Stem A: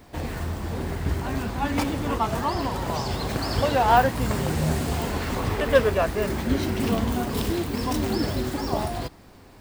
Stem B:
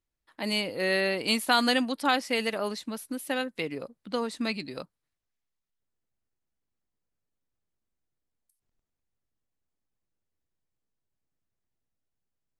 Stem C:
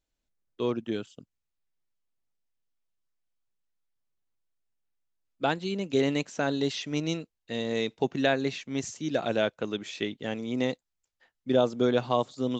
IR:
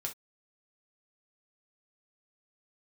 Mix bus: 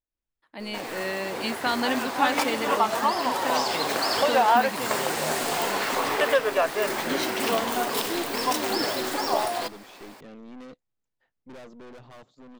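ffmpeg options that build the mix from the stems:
-filter_complex "[0:a]highpass=530,alimiter=limit=-17dB:level=0:latency=1:release=342,adelay=600,volume=1.5dB[link_01];[1:a]highshelf=frequency=5900:gain=-10.5,adelay=150,volume=-5.5dB[link_02];[2:a]highshelf=frequency=3000:gain=-11,aeval=exprs='(tanh(70.8*val(0)+0.5)-tanh(0.5))/70.8':channel_layout=same,volume=-8dB[link_03];[link_01][link_02][link_03]amix=inputs=3:normalize=0,dynaudnorm=framelen=330:gausssize=9:maxgain=4.5dB"

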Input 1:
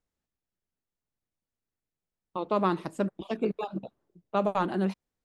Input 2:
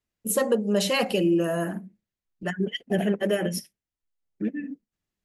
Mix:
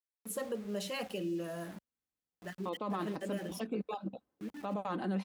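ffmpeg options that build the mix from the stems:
ffmpeg -i stem1.wav -i stem2.wav -filter_complex "[0:a]aecho=1:1:3.9:0.41,adelay=300,volume=-5.5dB[link_01];[1:a]aeval=exprs='val(0)*gte(abs(val(0)),0.0188)':channel_layout=same,volume=-14.5dB[link_02];[link_01][link_02]amix=inputs=2:normalize=0,highpass=48,alimiter=level_in=3dB:limit=-24dB:level=0:latency=1:release=29,volume=-3dB" out.wav

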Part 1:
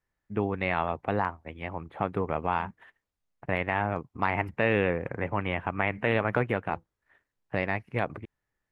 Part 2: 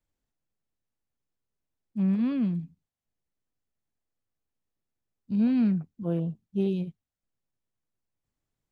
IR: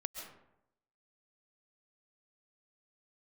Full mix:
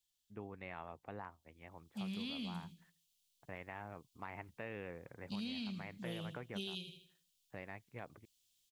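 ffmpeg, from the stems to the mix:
-filter_complex "[0:a]volume=-19.5dB[link_01];[1:a]equalizer=frequency=3200:width=1.7:gain=8,aexciter=amount=8.6:drive=8.9:freq=2600,volume=-12dB,afade=type=in:start_time=1.29:duration=0.75:silence=0.398107,asplit=2[link_02][link_03];[link_03]volume=-12dB,aecho=0:1:80|160|240|320|400:1|0.37|0.137|0.0507|0.0187[link_04];[link_01][link_02][link_04]amix=inputs=3:normalize=0,acompressor=threshold=-39dB:ratio=12"

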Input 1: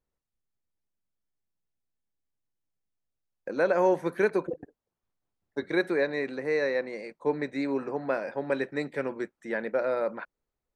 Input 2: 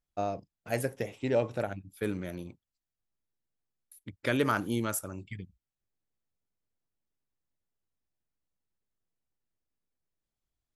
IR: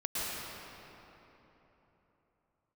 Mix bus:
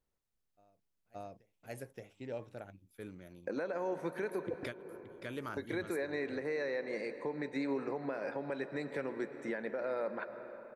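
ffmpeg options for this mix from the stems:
-filter_complex "[0:a]acompressor=threshold=-27dB:ratio=6,volume=-1dB,asplit=3[link_01][link_02][link_03];[link_02]volume=-17.5dB[link_04];[1:a]adelay=400,volume=-4dB,asplit=2[link_05][link_06];[link_06]volume=-10.5dB[link_07];[link_03]apad=whole_len=491941[link_08];[link_05][link_08]sidechaingate=range=-33dB:threshold=-50dB:ratio=16:detection=peak[link_09];[2:a]atrim=start_sample=2205[link_10];[link_04][link_10]afir=irnorm=-1:irlink=0[link_11];[link_07]aecho=0:1:573:1[link_12];[link_01][link_09][link_11][link_12]amix=inputs=4:normalize=0,alimiter=level_in=3.5dB:limit=-24dB:level=0:latency=1:release=215,volume=-3.5dB"

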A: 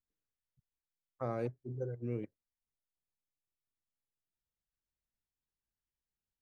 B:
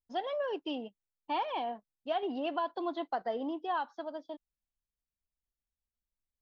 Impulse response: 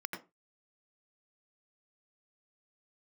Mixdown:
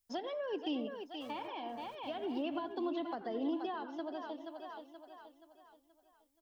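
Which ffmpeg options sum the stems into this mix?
-filter_complex "[0:a]aemphasis=mode=production:type=riaa,acrusher=bits=6:mix=0:aa=0.000001,volume=-17dB,asplit=3[link_01][link_02][link_03];[link_02]volume=-3dB[link_04];[1:a]highshelf=frequency=4200:gain=11,volume=2.5dB,asplit=3[link_05][link_06][link_07];[link_06]volume=-10dB[link_08];[link_07]volume=-11dB[link_09];[link_03]apad=whole_len=283114[link_10];[link_05][link_10]sidechaincompress=threshold=-59dB:ratio=8:attack=16:release=895[link_11];[2:a]atrim=start_sample=2205[link_12];[link_08][link_12]afir=irnorm=-1:irlink=0[link_13];[link_04][link_09]amix=inputs=2:normalize=0,aecho=0:1:477|954|1431|1908|2385|2862:1|0.41|0.168|0.0689|0.0283|0.0116[link_14];[link_01][link_11][link_13][link_14]amix=inputs=4:normalize=0,acrossover=split=350[link_15][link_16];[link_16]acompressor=threshold=-42dB:ratio=5[link_17];[link_15][link_17]amix=inputs=2:normalize=0"

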